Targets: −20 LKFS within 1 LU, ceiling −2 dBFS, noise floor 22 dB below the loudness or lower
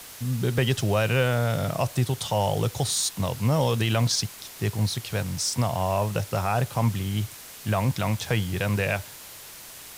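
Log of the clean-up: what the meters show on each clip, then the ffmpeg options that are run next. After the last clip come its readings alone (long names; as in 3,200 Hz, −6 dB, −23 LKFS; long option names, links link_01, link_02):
background noise floor −43 dBFS; target noise floor −48 dBFS; integrated loudness −26.0 LKFS; sample peak −10.5 dBFS; target loudness −20.0 LKFS
→ -af "afftdn=noise_reduction=6:noise_floor=-43"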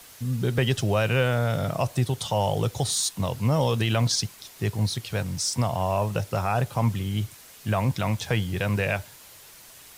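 background noise floor −49 dBFS; integrated loudness −26.0 LKFS; sample peak −10.5 dBFS; target loudness −20.0 LKFS
→ -af "volume=6dB"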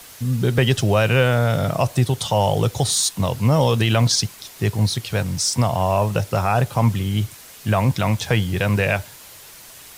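integrated loudness −20.0 LKFS; sample peak −4.5 dBFS; background noise floor −43 dBFS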